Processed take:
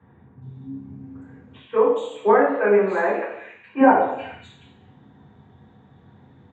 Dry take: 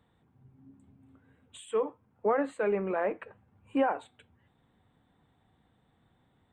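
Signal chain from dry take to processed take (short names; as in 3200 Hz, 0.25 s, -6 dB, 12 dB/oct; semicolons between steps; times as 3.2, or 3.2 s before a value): 1.73–3.79 HPF 500 Hz -> 1500 Hz 6 dB/oct; bands offset in time lows, highs 0.42 s, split 2700 Hz; reverb RT60 0.85 s, pre-delay 3 ms, DRR -10 dB; downsampling 16000 Hz; gain -4 dB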